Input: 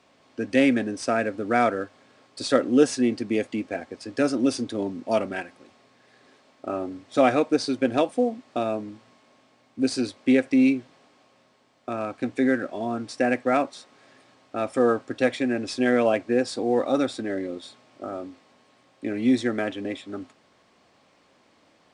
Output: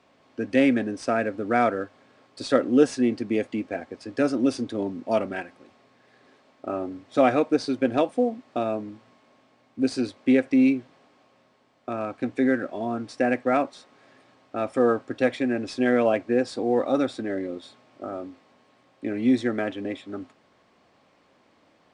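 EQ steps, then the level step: high shelf 4100 Hz -8 dB; 0.0 dB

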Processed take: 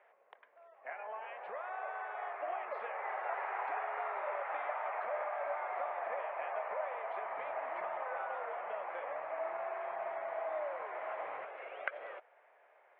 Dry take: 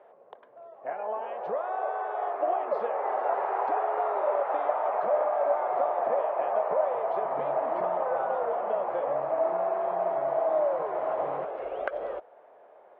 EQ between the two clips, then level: band-pass 2200 Hz, Q 2.7; air absorption 110 m; +6.0 dB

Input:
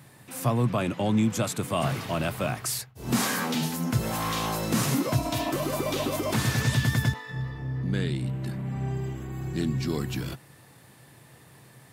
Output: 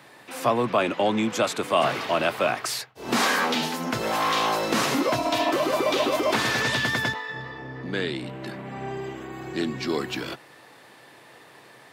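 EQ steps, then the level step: three-band isolator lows -21 dB, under 290 Hz, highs -13 dB, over 5400 Hz; +7.5 dB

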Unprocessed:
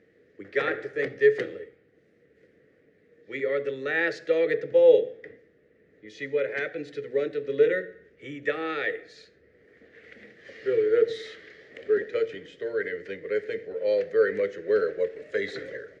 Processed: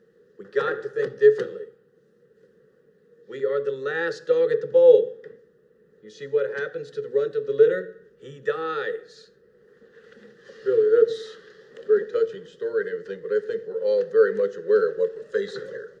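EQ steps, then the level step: bell 1500 Hz +2 dB; fixed phaser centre 440 Hz, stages 8; +4.5 dB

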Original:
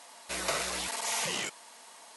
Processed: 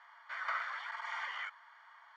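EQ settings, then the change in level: polynomial smoothing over 41 samples; HPF 1200 Hz 24 dB/oct; air absorption 200 m; +5.0 dB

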